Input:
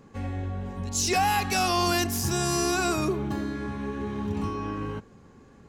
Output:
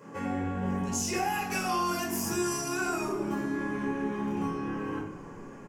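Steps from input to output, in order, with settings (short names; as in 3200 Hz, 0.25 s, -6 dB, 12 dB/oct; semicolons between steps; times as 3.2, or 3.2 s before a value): Bessel high-pass 300 Hz, order 2; bell 3900 Hz -14 dB 0.44 oct; compressor 4:1, threshold -40 dBFS, peak gain reduction 15.5 dB; on a send: frequency-shifting echo 0.192 s, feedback 65%, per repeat -36 Hz, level -18.5 dB; on the sum: shoebox room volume 570 m³, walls furnished, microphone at 4.9 m; gain +2 dB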